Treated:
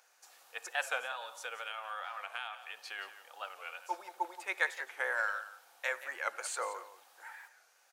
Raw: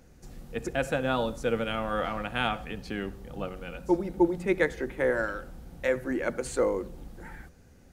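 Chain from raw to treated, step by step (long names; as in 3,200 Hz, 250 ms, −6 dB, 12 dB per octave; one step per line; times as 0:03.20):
high-pass filter 810 Hz 24 dB per octave
notch filter 2,000 Hz, Q 16
0:00.99–0:02.99: downward compressor 6 to 1, threshold −38 dBFS, peak gain reduction 13 dB
single-tap delay 175 ms −14 dB
wow of a warped record 45 rpm, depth 100 cents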